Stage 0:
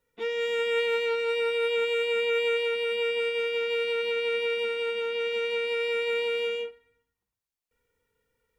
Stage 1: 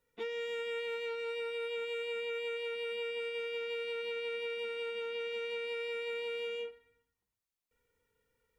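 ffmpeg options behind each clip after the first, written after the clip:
-af "acompressor=threshold=-33dB:ratio=6,volume=-2.5dB"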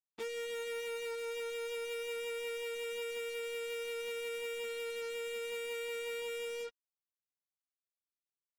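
-af "acrusher=bits=6:mix=0:aa=0.5,volume=-2dB"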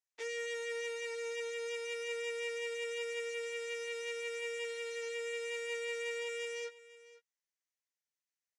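-filter_complex "[0:a]highpass=f=450:w=0.5412,highpass=f=450:w=1.3066,equalizer=f=760:t=q:w=4:g=-7,equalizer=f=1.2k:t=q:w=4:g=-9,equalizer=f=1.9k:t=q:w=4:g=7,equalizer=f=3.6k:t=q:w=4:g=-3,equalizer=f=6.1k:t=q:w=4:g=6,lowpass=f=8.9k:w=0.5412,lowpass=f=8.9k:w=1.3066,asplit=2[a][b];[b]adelay=17,volume=-9.5dB[c];[a][c]amix=inputs=2:normalize=0,aecho=1:1:500:0.126"

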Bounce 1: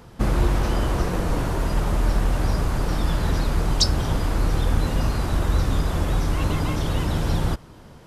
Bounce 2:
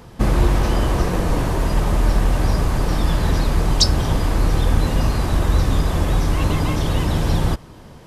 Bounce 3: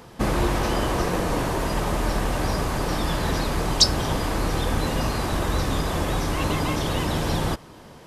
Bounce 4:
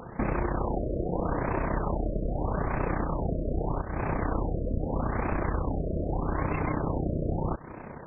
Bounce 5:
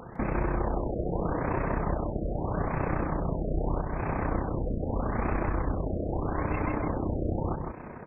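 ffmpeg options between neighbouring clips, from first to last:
-af "bandreject=f=1.4k:w=15,volume=4dB"
-af "lowshelf=f=150:g=-11"
-af "acompressor=threshold=-28dB:ratio=12,tremolo=f=31:d=0.621,afftfilt=real='re*lt(b*sr/1024,650*pow(2700/650,0.5+0.5*sin(2*PI*0.8*pts/sr)))':imag='im*lt(b*sr/1024,650*pow(2700/650,0.5+0.5*sin(2*PI*0.8*pts/sr)))':win_size=1024:overlap=0.75,volume=6.5dB"
-af "aecho=1:1:156:0.596,volume=-1.5dB"

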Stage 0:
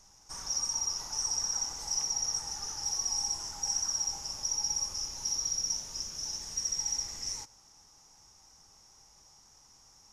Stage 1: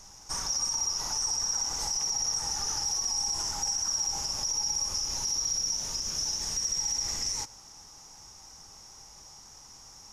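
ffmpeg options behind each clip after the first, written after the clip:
-af "alimiter=level_in=6.5dB:limit=-24dB:level=0:latency=1:release=85,volume=-6.5dB,volume=9dB"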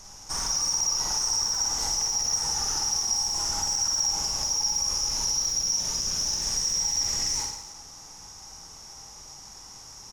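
-filter_complex "[0:a]asplit=2[a][b];[b]asoftclip=type=tanh:threshold=-32.5dB,volume=-7dB[c];[a][c]amix=inputs=2:normalize=0,aecho=1:1:50|110|182|268.4|372.1:0.631|0.398|0.251|0.158|0.1"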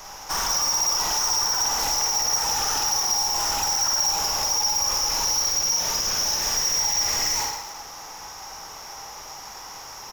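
-filter_complex "[0:a]acrossover=split=420|3700[a][b][c];[b]aeval=exprs='0.0562*sin(PI/2*3.16*val(0)/0.0562)':c=same[d];[c]aexciter=amount=8.6:drive=5:freq=12k[e];[a][d][e]amix=inputs=3:normalize=0"

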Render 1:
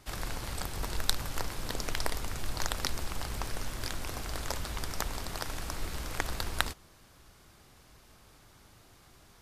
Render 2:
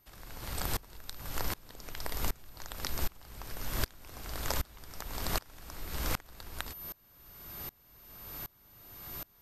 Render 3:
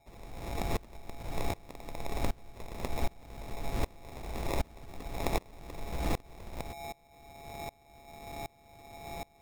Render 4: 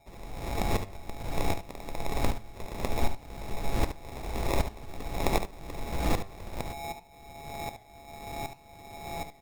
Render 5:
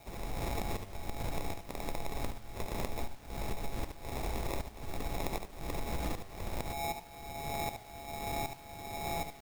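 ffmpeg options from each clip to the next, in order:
-af "acompressor=threshold=-42dB:ratio=3,aeval=exprs='val(0)+0.00224*sin(2*PI*13000*n/s)':c=same,aeval=exprs='val(0)*pow(10,-28*if(lt(mod(-1.3*n/s,1),2*abs(-1.3)/1000),1-mod(-1.3*n/s,1)/(2*abs(-1.3)/1000),(mod(-1.3*n/s,1)-2*abs(-1.3)/1000)/(1-2*abs(-1.3)/1000))/20)':c=same,volume=14.5dB"
-af "acrusher=samples=29:mix=1:aa=0.000001,volume=1.5dB"
-filter_complex "[0:a]flanger=delay=5.1:depth=5.2:regen=87:speed=0.56:shape=sinusoidal,asplit=2[a][b];[b]aecho=0:1:72:0.316[c];[a][c]amix=inputs=2:normalize=0,volume=9dB"
-af "highshelf=f=10k:g=5,acompressor=threshold=-35dB:ratio=12,acrusher=bits=9:mix=0:aa=0.000001,volume=3.5dB"

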